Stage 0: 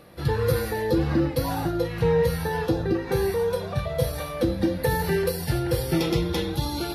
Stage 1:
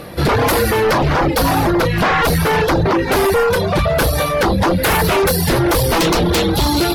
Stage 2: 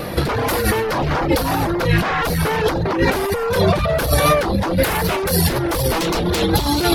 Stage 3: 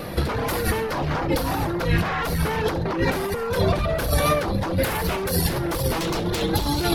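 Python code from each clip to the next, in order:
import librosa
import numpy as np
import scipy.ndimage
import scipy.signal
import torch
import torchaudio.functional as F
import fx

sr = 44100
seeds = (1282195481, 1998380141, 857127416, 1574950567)

y1 = fx.fold_sine(x, sr, drive_db=14, ceiling_db=-10.0)
y1 = fx.dereverb_blind(y1, sr, rt60_s=0.5)
y2 = fx.vibrato(y1, sr, rate_hz=4.0, depth_cents=39.0)
y2 = fx.over_compress(y2, sr, threshold_db=-18.0, ratio=-0.5)
y2 = y2 * 10.0 ** (1.5 / 20.0)
y3 = fx.octave_divider(y2, sr, octaves=1, level_db=-4.0)
y3 = fx.echo_feedback(y3, sr, ms=67, feedback_pct=39, wet_db=-15.0)
y3 = y3 * 10.0 ** (-6.0 / 20.0)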